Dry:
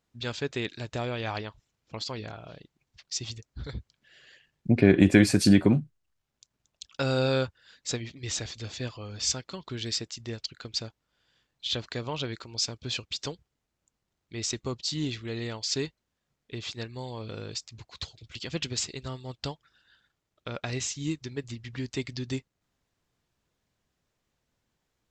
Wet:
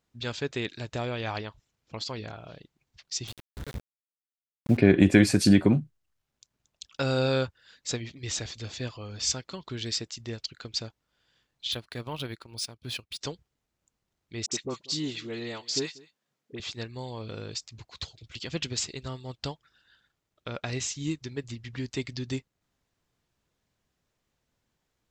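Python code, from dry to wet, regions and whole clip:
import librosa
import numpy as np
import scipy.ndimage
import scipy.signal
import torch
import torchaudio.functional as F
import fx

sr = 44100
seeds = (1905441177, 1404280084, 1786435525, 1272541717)

y = fx.chain(x, sr, fx.lowpass(hz=3800.0, slope=24),
    fx.sample_gate(floor_db=-37.0), at=(3.27, 4.77))
y = fx.chain(y, sr, fx.transient(attack_db=-4, sustain_db=-11),
    fx.peak_eq(hz=480.0, db=-3.0, octaves=0.91),
    fx.resample_linear(factor=3), at=(11.72, 13.21))
y = fx.chain(y, sr, fx.highpass(hz=180.0, slope=12),
    fx.dispersion(late='highs', ms=56.0, hz=1200.0),
    fx.echo_single(ms=189, db=-22.0), at=(14.46, 16.6))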